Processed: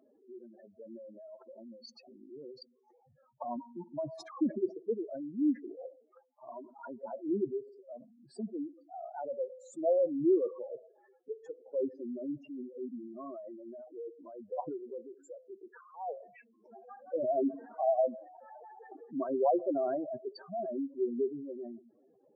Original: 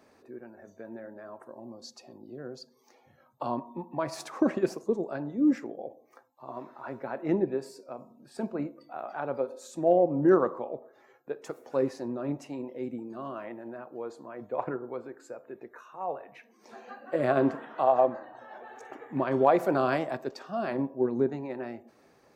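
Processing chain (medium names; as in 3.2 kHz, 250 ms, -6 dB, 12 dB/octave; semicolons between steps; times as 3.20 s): spectral contrast enhancement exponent 3.9; 2.40–3.56 s: dynamic bell 150 Hz, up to -5 dB, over -50 dBFS, Q 0.71; trim -4.5 dB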